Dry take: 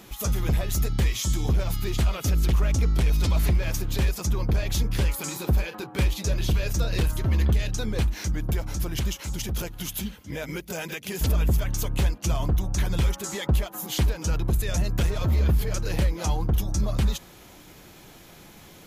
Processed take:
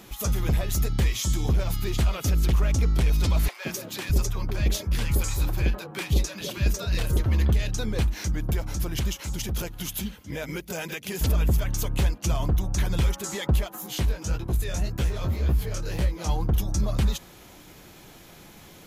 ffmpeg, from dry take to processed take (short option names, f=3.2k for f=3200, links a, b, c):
-filter_complex "[0:a]asettb=1/sr,asplit=3[a][b][c];[a]atrim=end=3.484[d];[b]atrim=start=3.48:end=7.26,asetpts=PTS-STARTPTS,afade=t=in:d=0.004:c=qsin,afade=t=out:st=3.776:d=0.004:c=qsin,acrossover=split=170|650[e][f][g];[f]adelay=170[h];[e]adelay=610[i];[i][h][g]amix=inputs=3:normalize=0,atrim=end_sample=166698[j];[c]atrim=start=7.256[k];[d][j]acrossfade=d=0.004:c1=hsin:c2=qsin[l];[l][k]acrossfade=d=0.004:c1=qsin:c2=hsin,asplit=3[m][n][o];[m]afade=t=out:st=13.75:d=0.02[p];[n]flanger=delay=15:depth=7.5:speed=1.8,afade=t=in:st=13.75:d=0.02,afade=t=out:st=16.27:d=0.02[q];[o]afade=t=in:st=16.27:d=0.02[r];[p][q][r]amix=inputs=3:normalize=0"